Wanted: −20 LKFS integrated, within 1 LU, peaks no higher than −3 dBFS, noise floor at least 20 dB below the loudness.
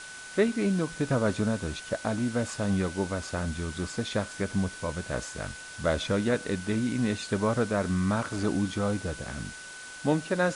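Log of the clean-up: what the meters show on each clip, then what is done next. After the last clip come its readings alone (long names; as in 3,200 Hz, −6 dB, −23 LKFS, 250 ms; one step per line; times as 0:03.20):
interfering tone 1,500 Hz; level of the tone −43 dBFS; background noise floor −43 dBFS; target noise floor −50 dBFS; integrated loudness −29.5 LKFS; sample peak −11.5 dBFS; target loudness −20.0 LKFS
→ notch filter 1,500 Hz, Q 30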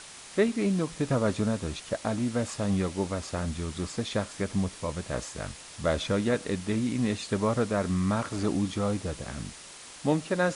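interfering tone none found; background noise floor −46 dBFS; target noise floor −50 dBFS
→ broadband denoise 6 dB, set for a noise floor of −46 dBFS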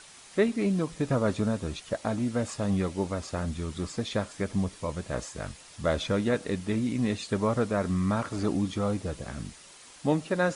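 background noise floor −51 dBFS; integrated loudness −30.0 LKFS; sample peak −12.0 dBFS; target loudness −20.0 LKFS
→ level +10 dB
brickwall limiter −3 dBFS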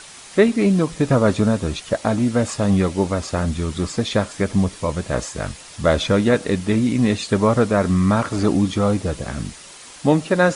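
integrated loudness −20.0 LKFS; sample peak −3.0 dBFS; background noise floor −41 dBFS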